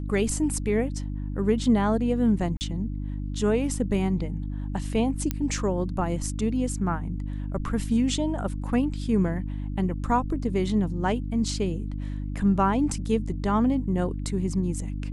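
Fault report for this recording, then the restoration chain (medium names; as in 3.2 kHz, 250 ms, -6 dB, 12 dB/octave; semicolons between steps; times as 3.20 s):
hum 50 Hz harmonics 6 -31 dBFS
2.57–2.61 s: dropout 39 ms
5.31 s: pop -12 dBFS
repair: de-click; de-hum 50 Hz, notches 6; interpolate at 2.57 s, 39 ms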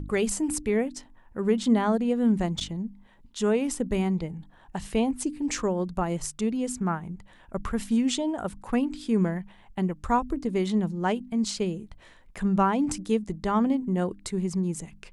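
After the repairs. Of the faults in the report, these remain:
nothing left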